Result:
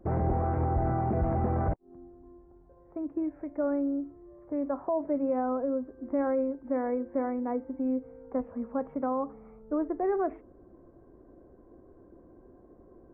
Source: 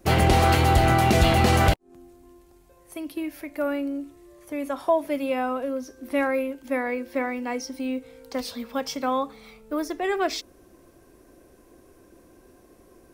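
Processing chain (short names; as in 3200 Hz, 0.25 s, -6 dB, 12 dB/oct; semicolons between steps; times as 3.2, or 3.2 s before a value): limiter -18.5 dBFS, peak gain reduction 9.5 dB; Gaussian blur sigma 7.5 samples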